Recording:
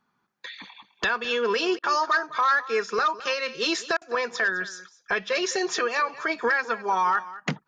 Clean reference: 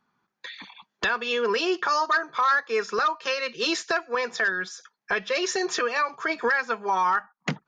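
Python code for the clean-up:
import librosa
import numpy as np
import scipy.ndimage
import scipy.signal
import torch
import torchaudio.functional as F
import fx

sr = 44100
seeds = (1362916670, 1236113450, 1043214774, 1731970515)

y = fx.fix_interpolate(x, sr, at_s=(1.79, 3.97), length_ms=44.0)
y = fx.fix_echo_inverse(y, sr, delay_ms=208, level_db=-16.5)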